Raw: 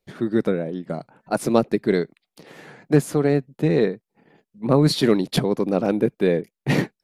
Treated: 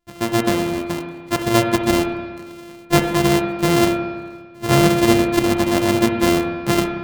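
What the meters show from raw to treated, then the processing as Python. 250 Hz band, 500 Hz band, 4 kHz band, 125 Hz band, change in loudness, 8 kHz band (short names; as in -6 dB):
+4.0 dB, +1.5 dB, +6.5 dB, +1.5 dB, +3.5 dB, +10.0 dB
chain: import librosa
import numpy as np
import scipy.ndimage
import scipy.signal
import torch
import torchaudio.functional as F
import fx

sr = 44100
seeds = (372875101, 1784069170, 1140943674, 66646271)

y = np.r_[np.sort(x[:len(x) // 128 * 128].reshape(-1, 128), axis=1).ravel(), x[len(x) // 128 * 128:]]
y = fx.rev_spring(y, sr, rt60_s=1.5, pass_ms=(30, 58), chirp_ms=75, drr_db=4.0)
y = F.gain(torch.from_numpy(y), 1.5).numpy()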